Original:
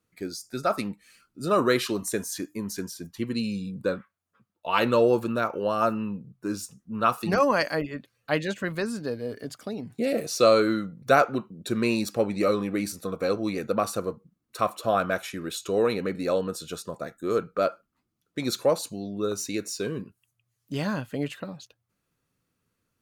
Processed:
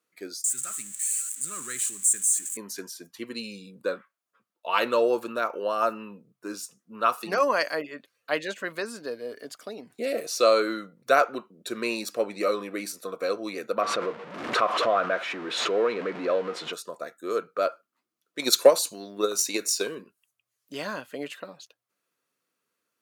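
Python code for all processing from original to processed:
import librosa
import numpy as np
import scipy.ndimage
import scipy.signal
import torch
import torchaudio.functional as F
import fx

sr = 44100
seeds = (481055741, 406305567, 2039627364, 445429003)

y = fx.chain(x, sr, fx.crossing_spikes(level_db=-21.5),
    fx.curve_eq(hz=(140.0, 620.0, 1700.0, 5200.0, 7800.0, 12000.0), db=(0, -30, -9, -16, 12, -11)), at=(0.44, 2.57))
y = fx.chain(y, sr, fx.zero_step(step_db=-31.0),
    fx.lowpass(hz=2500.0, slope=12),
    fx.pre_swell(db_per_s=43.0), at=(13.81, 16.73))
y = fx.chain(y, sr, fx.high_shelf(hz=3400.0, db=7.0),
    fx.transient(attack_db=11, sustain_db=4), at=(18.39, 19.95))
y = scipy.signal.sosfilt(scipy.signal.butter(2, 410.0, 'highpass', fs=sr, output='sos'), y)
y = fx.notch(y, sr, hz=820.0, q=12.0)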